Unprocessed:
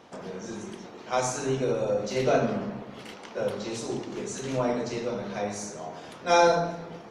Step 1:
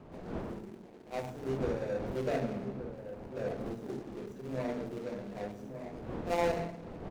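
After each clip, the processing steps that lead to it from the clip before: median filter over 41 samples; wind noise 450 Hz -39 dBFS; outdoor echo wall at 200 m, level -9 dB; gain -7 dB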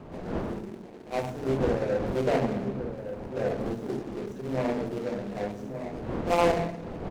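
Doppler distortion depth 0.49 ms; gain +7.5 dB

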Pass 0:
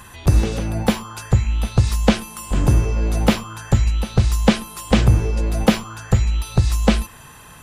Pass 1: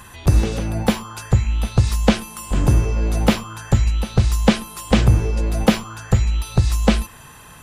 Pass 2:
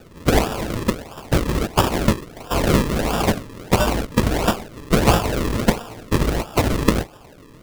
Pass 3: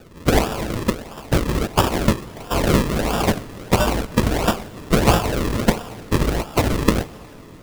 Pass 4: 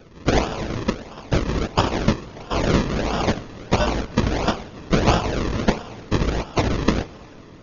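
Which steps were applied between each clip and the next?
nothing audible
spectral whitening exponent 0.3; decimation with a swept rate 41×, swing 100% 1.5 Hz; gain -2.5 dB
plate-style reverb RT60 4.4 s, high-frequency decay 0.95×, DRR 19 dB
gain -2 dB; AC-3 32 kbps 48000 Hz

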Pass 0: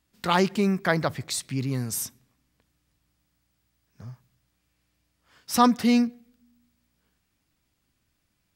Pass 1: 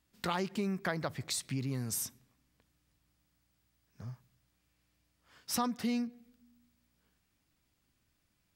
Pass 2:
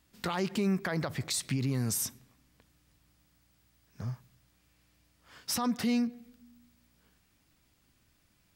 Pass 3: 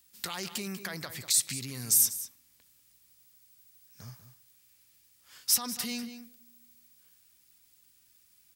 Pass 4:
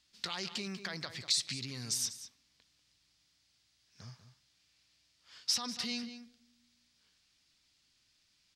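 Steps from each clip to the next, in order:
compressor 4:1, threshold -29 dBFS, peak gain reduction 13 dB; gain -3 dB
limiter -29.5 dBFS, peak gain reduction 10 dB; gain +7.5 dB
pre-emphasis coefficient 0.9; outdoor echo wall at 33 m, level -11 dB; gain +9 dB
synth low-pass 4600 Hz, resonance Q 1.7; gain -3.5 dB

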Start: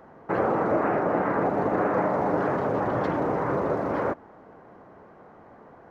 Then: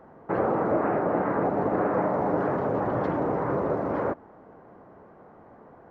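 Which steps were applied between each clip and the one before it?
high shelf 2100 Hz -9.5 dB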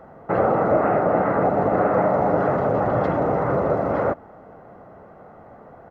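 comb 1.5 ms, depth 35%; gain +5.5 dB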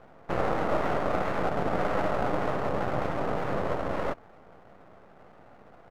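half-wave rectifier; gain -4.5 dB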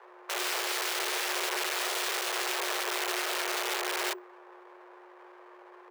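wrapped overs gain 24 dB; frequency shift +360 Hz

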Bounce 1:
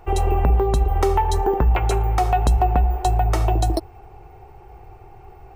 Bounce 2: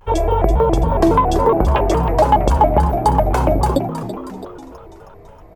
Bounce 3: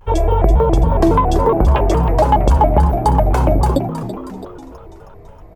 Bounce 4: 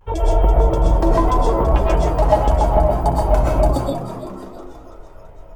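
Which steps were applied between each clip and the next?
frequency-shifting echo 0.324 s, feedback 56%, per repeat +85 Hz, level -10 dB; dynamic EQ 580 Hz, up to +8 dB, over -34 dBFS, Q 0.72; shaped vibrato square 3.6 Hz, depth 250 cents
low shelf 200 Hz +5.5 dB; gain -1 dB
reverb RT60 0.35 s, pre-delay 85 ms, DRR -3 dB; gain -7 dB

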